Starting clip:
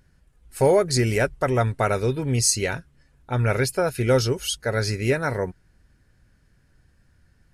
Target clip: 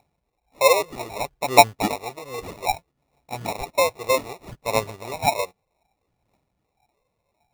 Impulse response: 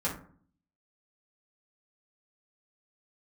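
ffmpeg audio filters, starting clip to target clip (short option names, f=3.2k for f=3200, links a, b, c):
-filter_complex "[0:a]asplit=3[a][b][c];[a]bandpass=f=730:t=q:w=8,volume=0dB[d];[b]bandpass=f=1.09k:t=q:w=8,volume=-6dB[e];[c]bandpass=f=2.44k:t=q:w=8,volume=-9dB[f];[d][e][f]amix=inputs=3:normalize=0,aphaser=in_gain=1:out_gain=1:delay=2.2:decay=0.76:speed=0.63:type=triangular,acrusher=samples=28:mix=1:aa=0.000001,volume=7.5dB"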